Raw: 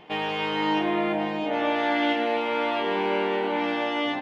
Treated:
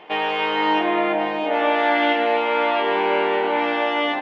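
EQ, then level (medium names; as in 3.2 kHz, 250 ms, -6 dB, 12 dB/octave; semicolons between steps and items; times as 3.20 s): tone controls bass -14 dB, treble -10 dB; bass shelf 90 Hz -8.5 dB; +7.0 dB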